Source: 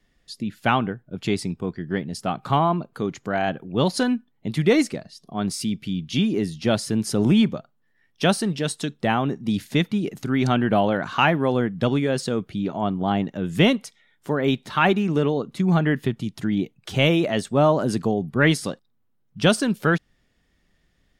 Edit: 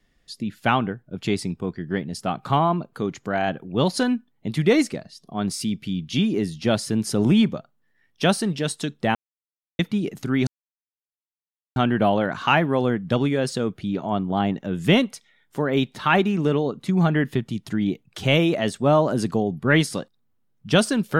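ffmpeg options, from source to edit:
ffmpeg -i in.wav -filter_complex "[0:a]asplit=4[link_01][link_02][link_03][link_04];[link_01]atrim=end=9.15,asetpts=PTS-STARTPTS,afade=type=out:start_time=9.146:duration=0.004:curve=hsin[link_05];[link_02]atrim=start=9.15:end=9.79,asetpts=PTS-STARTPTS,volume=0[link_06];[link_03]atrim=start=9.79:end=10.47,asetpts=PTS-STARTPTS,afade=type=in:duration=0.004:curve=hsin,afade=type=out:start_time=0.676:duration=0.004:curve=hsin,apad=pad_dur=1.29[link_07];[link_04]atrim=start=10.47,asetpts=PTS-STARTPTS,afade=type=in:duration=0.004:curve=hsin[link_08];[link_05][link_06][link_07][link_08]concat=n=4:v=0:a=1" out.wav

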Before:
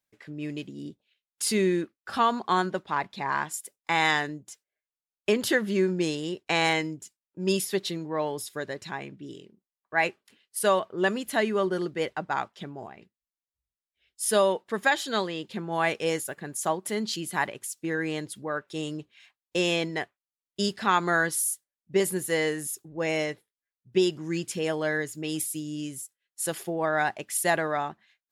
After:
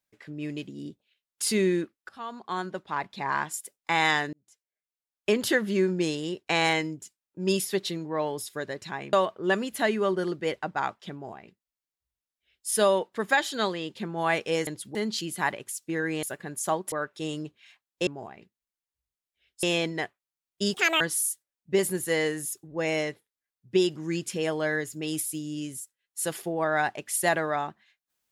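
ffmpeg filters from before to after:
ffmpeg -i in.wav -filter_complex "[0:a]asplit=12[link_01][link_02][link_03][link_04][link_05][link_06][link_07][link_08][link_09][link_10][link_11][link_12];[link_01]atrim=end=2.09,asetpts=PTS-STARTPTS,afade=type=out:start_time=2.086:duration=0.004:curve=hsin:silence=0.0630957[link_13];[link_02]atrim=start=2.09:end=4.33,asetpts=PTS-STARTPTS,afade=type=in:duration=1.2:silence=0.0630957,afade=type=out:start_time=2.236:duration=0.004:curve=hsin[link_14];[link_03]atrim=start=4.33:end=9.132,asetpts=PTS-STARTPTS,afade=type=in:duration=1[link_15];[link_04]atrim=start=10.668:end=16.212[link_16];[link_05]atrim=start=18.178:end=18.462[link_17];[link_06]atrim=start=16.898:end=18.182[link_18];[link_07]atrim=start=16.208:end=16.902[link_19];[link_08]atrim=start=18.458:end=19.612[link_20];[link_09]atrim=start=12.668:end=14.232[link_21];[link_10]atrim=start=19.608:end=20.724[link_22];[link_11]atrim=start=20.72:end=21.22,asetpts=PTS-STARTPTS,asetrate=82908,aresample=44100[link_23];[link_12]atrim=start=21.216[link_24];[link_13][link_14][link_15]concat=n=3:v=0:a=1[link_25];[link_25][link_16]acrossfade=duration=0.004:curve1=hsin:curve2=hsin[link_26];[link_26][link_17]acrossfade=duration=0.004:curve1=hsin:curve2=hsin[link_27];[link_27][link_18]acrossfade=duration=0.004:curve1=hsin:curve2=hsin[link_28];[link_28][link_19]acrossfade=duration=0.004:curve1=hsin:curve2=hsin[link_29];[link_29][link_20]acrossfade=duration=0.004:curve1=hsin:curve2=hsin[link_30];[link_30][link_21]acrossfade=duration=0.004:curve1=hsin:curve2=hsin[link_31];[link_31][link_22]acrossfade=duration=0.004:curve1=hsin:curve2=hsin[link_32];[link_32][link_23]acrossfade=duration=0.004:curve1=hsin:curve2=hsin[link_33];[link_33][link_24]acrossfade=duration=0.004:curve1=hsin:curve2=hsin" out.wav

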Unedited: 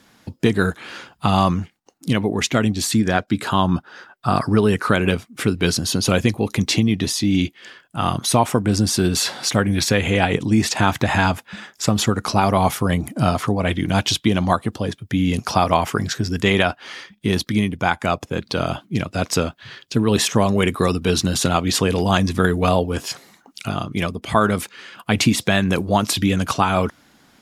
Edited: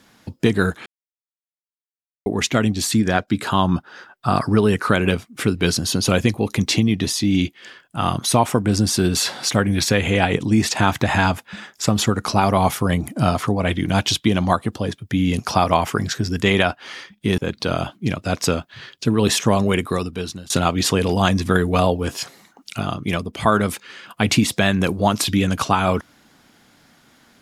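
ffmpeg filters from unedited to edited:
ffmpeg -i in.wav -filter_complex "[0:a]asplit=5[link_01][link_02][link_03][link_04][link_05];[link_01]atrim=end=0.86,asetpts=PTS-STARTPTS,afade=type=out:start_time=0.856:duration=0.004:curve=hsin[link_06];[link_02]atrim=start=0.86:end=2.26,asetpts=PTS-STARTPTS,volume=0[link_07];[link_03]atrim=start=2.26:end=17.382,asetpts=PTS-STARTPTS,afade=type=in:duration=0.004:curve=hsin[link_08];[link_04]atrim=start=18.268:end=21.39,asetpts=PTS-STARTPTS,afade=type=out:start_time=2.242:duration=0.88:silence=0.0668344[link_09];[link_05]atrim=start=21.39,asetpts=PTS-STARTPTS,afade=type=in:duration=0.004:curve=hsin:silence=0.0668344[link_10];[link_06][link_07][link_08]concat=n=3:v=0:a=1[link_11];[link_09][link_10]concat=n=2:v=0:a=1[link_12];[link_11][link_12]acrossfade=duration=0.004:curve1=hsin:curve2=hsin" out.wav

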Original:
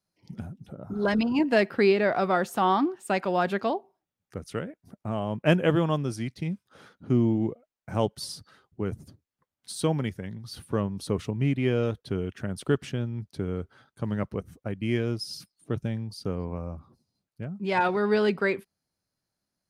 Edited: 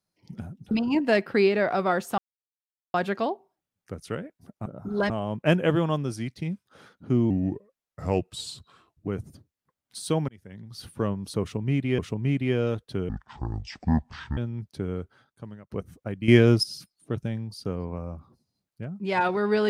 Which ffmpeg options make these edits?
ffmpeg -i in.wav -filter_complex "[0:a]asplit=15[link_01][link_02][link_03][link_04][link_05][link_06][link_07][link_08][link_09][link_10][link_11][link_12][link_13][link_14][link_15];[link_01]atrim=end=0.712[link_16];[link_02]atrim=start=1.148:end=2.62,asetpts=PTS-STARTPTS,afade=type=out:start_time=1.468:duration=0.004:curve=hsin[link_17];[link_03]atrim=start=2.62:end=3.38,asetpts=PTS-STARTPTS,volume=0[link_18];[link_04]atrim=start=3.38:end=5.102,asetpts=PTS-STARTPTS,afade=type=in:duration=0.004:curve=hsin[link_19];[link_05]atrim=start=0.708:end=1.152[link_20];[link_06]atrim=start=5.098:end=7.304[link_21];[link_07]atrim=start=7.3:end=8.81,asetpts=PTS-STARTPTS,asetrate=37485,aresample=44100,atrim=end_sample=78342,asetpts=PTS-STARTPTS[link_22];[link_08]atrim=start=8.806:end=10.02,asetpts=PTS-STARTPTS,afade=type=out:start_time=1.21:duration=0.004:curve=hsin[link_23];[link_09]atrim=start=10.02:end=11.722,asetpts=PTS-STARTPTS,afade=type=in:duration=0.53[link_24];[link_10]atrim=start=11.148:end=12.254[link_25];[link_11]atrim=start=12.25:end=12.97,asetpts=PTS-STARTPTS,asetrate=24696,aresample=44100[link_26];[link_12]atrim=start=12.966:end=14.3,asetpts=PTS-STARTPTS,afade=type=out:start_time=0.574:duration=0.76[link_27];[link_13]atrim=start=14.3:end=14.882,asetpts=PTS-STARTPTS,afade=type=in:duration=0.004:curve=hsin[link_28];[link_14]atrim=start=14.878:end=15.232,asetpts=PTS-STARTPTS,volume=10.5dB[link_29];[link_15]atrim=start=15.228[link_30];[link_17][link_18][link_19]concat=n=3:v=0:a=1[link_31];[link_16][link_31]acrossfade=duration=0.004:curve1=hsin:curve2=hsin[link_32];[link_32][link_20]acrossfade=duration=0.004:curve1=hsin:curve2=hsin[link_33];[link_33][link_21]acrossfade=duration=0.004:curve1=hsin:curve2=hsin[link_34];[link_34][link_22]acrossfade=duration=0.004:curve1=hsin:curve2=hsin[link_35];[link_23][link_24]concat=n=2:v=0:a=1[link_36];[link_35][link_36]acrossfade=duration=0.004:curve1=hsin:curve2=hsin[link_37];[link_37][link_25]acrossfade=duration=0.004:curve1=hsin:curve2=hsin[link_38];[link_38][link_26]acrossfade=duration=0.004:curve1=hsin:curve2=hsin[link_39];[link_27][link_28]concat=n=2:v=0:a=1[link_40];[link_39][link_40]acrossfade=duration=0.004:curve1=hsin:curve2=hsin[link_41];[link_41][link_29]acrossfade=duration=0.004:curve1=hsin:curve2=hsin[link_42];[link_42][link_30]acrossfade=duration=0.004:curve1=hsin:curve2=hsin" out.wav

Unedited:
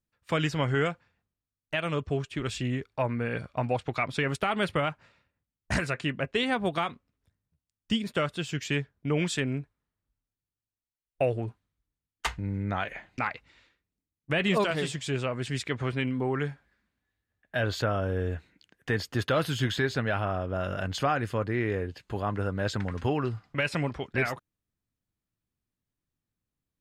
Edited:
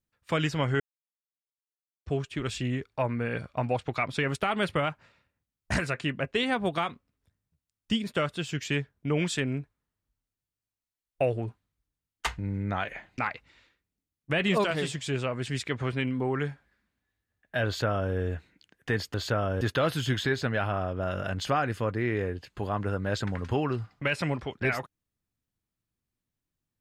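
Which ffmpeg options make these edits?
ffmpeg -i in.wav -filter_complex "[0:a]asplit=5[link_01][link_02][link_03][link_04][link_05];[link_01]atrim=end=0.8,asetpts=PTS-STARTPTS,afade=type=out:start_time=0.796:duration=0.004:curve=hsin[link_06];[link_02]atrim=start=0.8:end=2.06,asetpts=PTS-STARTPTS,volume=0[link_07];[link_03]atrim=start=2.06:end=19.142,asetpts=PTS-STARTPTS,afade=type=in:duration=0.004:curve=hsin[link_08];[link_04]atrim=start=17.658:end=18.132[link_09];[link_05]atrim=start=19.138[link_10];[link_06][link_07][link_08]concat=n=3:v=0:a=1[link_11];[link_11][link_09]acrossfade=duration=0.004:curve1=hsin:curve2=hsin[link_12];[link_12][link_10]acrossfade=duration=0.004:curve1=hsin:curve2=hsin" out.wav

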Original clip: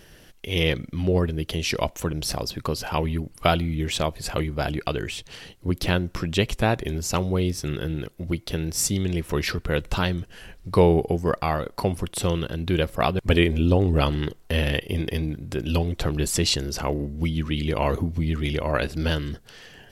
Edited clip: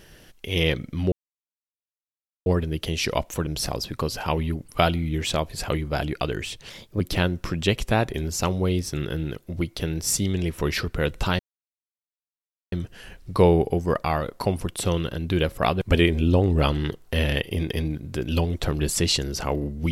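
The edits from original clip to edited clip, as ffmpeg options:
ffmpeg -i in.wav -filter_complex "[0:a]asplit=5[link_01][link_02][link_03][link_04][link_05];[link_01]atrim=end=1.12,asetpts=PTS-STARTPTS,afade=type=out:start_time=1.116:duration=0.004:curve=hsin,apad=pad_dur=1.34[link_06];[link_02]atrim=start=1.12:end=5.364,asetpts=PTS-STARTPTS,afade=type=in:duration=0.004:curve=hsin[link_07];[link_03]atrim=start=5.36:end=5.71,asetpts=PTS-STARTPTS,asetrate=51156,aresample=44100,atrim=end_sample=13306,asetpts=PTS-STARTPTS[link_08];[link_04]atrim=start=5.706:end=10.1,asetpts=PTS-STARTPTS,afade=type=out:start_time=4.39:duration=0.004:curve=hsin,apad=pad_dur=1.33[link_09];[link_05]atrim=start=10.1,asetpts=PTS-STARTPTS,afade=type=in:duration=0.004:curve=hsin[link_10];[link_06][link_07]concat=n=2:v=0:a=1[link_11];[link_11][link_08]acrossfade=duration=0.004:curve1=hsin:curve2=hsin[link_12];[link_09][link_10]concat=n=2:v=0:a=1[link_13];[link_12][link_13]acrossfade=duration=0.004:curve1=hsin:curve2=hsin" out.wav

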